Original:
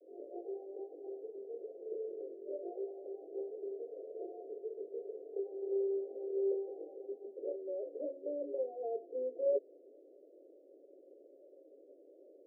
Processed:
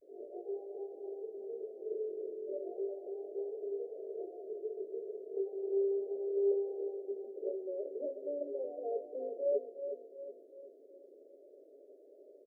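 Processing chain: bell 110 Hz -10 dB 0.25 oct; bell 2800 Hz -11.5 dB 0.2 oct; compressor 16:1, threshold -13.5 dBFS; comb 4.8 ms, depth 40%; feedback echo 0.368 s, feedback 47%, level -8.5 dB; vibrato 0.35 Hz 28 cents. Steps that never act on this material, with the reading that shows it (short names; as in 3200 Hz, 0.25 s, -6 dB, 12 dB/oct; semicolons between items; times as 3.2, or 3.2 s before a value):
bell 110 Hz: input band starts at 290 Hz; bell 2800 Hz: input band ends at 720 Hz; compressor, threshold -13.5 dBFS: input peak -23.0 dBFS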